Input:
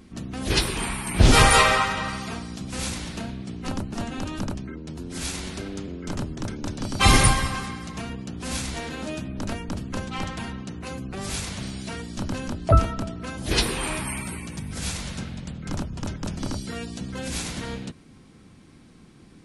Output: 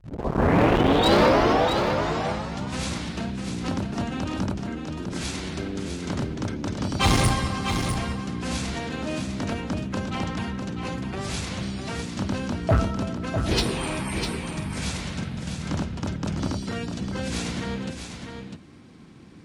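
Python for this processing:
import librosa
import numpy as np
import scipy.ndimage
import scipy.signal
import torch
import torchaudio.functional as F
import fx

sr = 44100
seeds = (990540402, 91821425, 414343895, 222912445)

p1 = fx.tape_start_head(x, sr, length_s=2.61)
p2 = fx.dynamic_eq(p1, sr, hz=1700.0, q=0.79, threshold_db=-36.0, ratio=4.0, max_db=-6)
p3 = fx.quant_companded(p2, sr, bits=4)
p4 = p2 + F.gain(torch.from_numpy(p3), -10.5).numpy()
p5 = scipy.signal.sosfilt(scipy.signal.butter(2, 8900.0, 'lowpass', fs=sr, output='sos'), p4)
p6 = fx.high_shelf(p5, sr, hz=5600.0, db=-6.5)
p7 = np.clip(p6, -10.0 ** (-14.0 / 20.0), 10.0 ** (-14.0 / 20.0))
p8 = scipy.signal.sosfilt(scipy.signal.butter(2, 60.0, 'highpass', fs=sr, output='sos'), p7)
y = p8 + fx.echo_single(p8, sr, ms=651, db=-7.0, dry=0)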